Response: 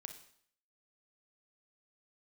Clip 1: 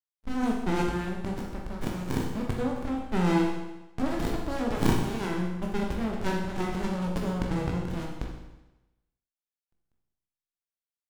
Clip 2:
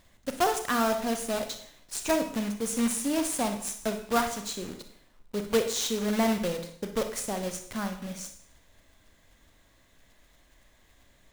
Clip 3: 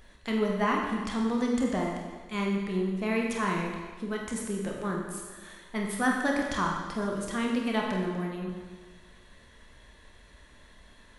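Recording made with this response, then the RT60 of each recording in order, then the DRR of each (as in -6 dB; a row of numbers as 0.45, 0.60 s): 2; 1.0, 0.60, 1.4 s; -1.0, 6.5, -1.0 dB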